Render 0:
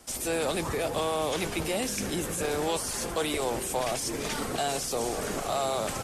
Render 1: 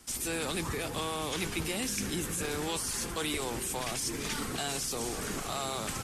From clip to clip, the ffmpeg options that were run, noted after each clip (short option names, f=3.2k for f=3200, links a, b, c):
-af "equalizer=f=610:w=1.4:g=-10.5,volume=-1dB"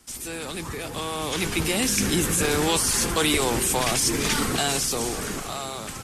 -af "dynaudnorm=f=260:g=11:m=11.5dB"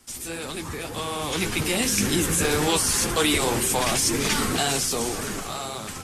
-af "flanger=delay=7.2:depth=6.3:regen=-33:speed=1.9:shape=triangular,volume=4dB"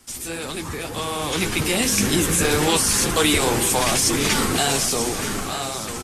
-af "aecho=1:1:931:0.282,volume=3dB"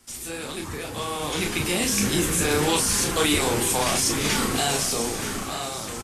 -filter_complex "[0:a]asplit=2[a][b];[b]adelay=34,volume=-5dB[c];[a][c]amix=inputs=2:normalize=0,volume=-4.5dB"